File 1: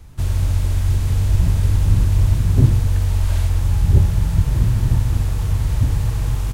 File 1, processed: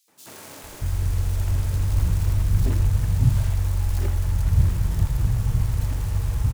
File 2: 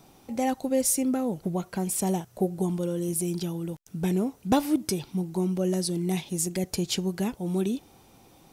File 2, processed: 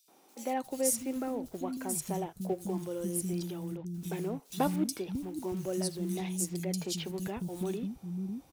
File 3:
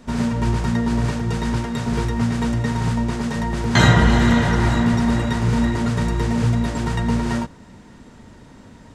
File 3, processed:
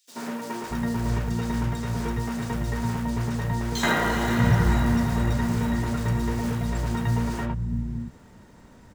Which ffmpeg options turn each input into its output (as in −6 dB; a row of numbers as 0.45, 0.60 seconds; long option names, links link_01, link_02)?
-filter_complex "[0:a]acrusher=bits=6:mode=log:mix=0:aa=0.000001,acrossover=split=240|3400[link_01][link_02][link_03];[link_02]adelay=80[link_04];[link_01]adelay=630[link_05];[link_05][link_04][link_03]amix=inputs=3:normalize=0,volume=-5dB"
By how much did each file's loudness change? −5.0, −6.5, −6.0 LU